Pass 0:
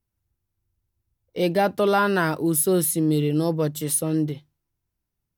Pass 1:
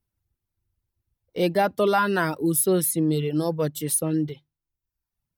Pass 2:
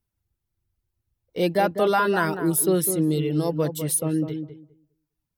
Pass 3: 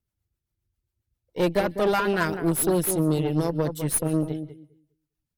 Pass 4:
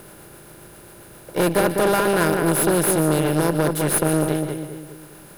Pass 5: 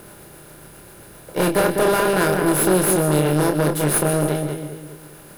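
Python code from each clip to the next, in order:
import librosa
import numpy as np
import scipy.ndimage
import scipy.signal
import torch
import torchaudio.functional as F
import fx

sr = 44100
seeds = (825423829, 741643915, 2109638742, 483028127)

y1 = fx.dereverb_blind(x, sr, rt60_s=0.82)
y1 = fx.peak_eq(y1, sr, hz=6700.0, db=-2.5, octaves=0.41)
y2 = fx.echo_filtered(y1, sr, ms=202, feedback_pct=18, hz=1100.0, wet_db=-7.5)
y3 = fx.echo_wet_highpass(y2, sr, ms=148, feedback_pct=34, hz=1700.0, wet_db=-23)
y3 = fx.rotary(y3, sr, hz=7.5)
y3 = fx.cheby_harmonics(y3, sr, harmonics=(6,), levels_db=(-18,), full_scale_db=-11.0)
y4 = fx.bin_compress(y3, sr, power=0.4)
y5 = fx.doubler(y4, sr, ms=27.0, db=-5.5)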